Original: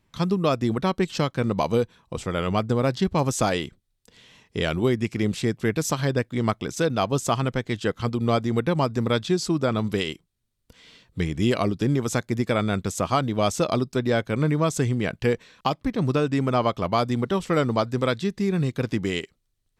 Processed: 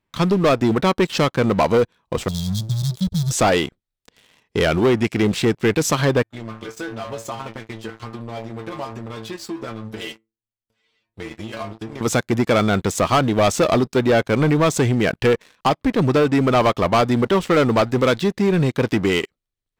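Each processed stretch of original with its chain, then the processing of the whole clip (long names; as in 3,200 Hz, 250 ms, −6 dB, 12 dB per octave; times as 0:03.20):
0:02.28–0:03.31: gap after every zero crossing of 0.12 ms + linear-phase brick-wall band-stop 200–3,200 Hz
0:06.23–0:12.01: stiff-string resonator 110 Hz, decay 0.29 s, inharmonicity 0.002 + downward compressor 10 to 1, threshold −34 dBFS
whole clip: bass and treble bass −6 dB, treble −6 dB; leveller curve on the samples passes 3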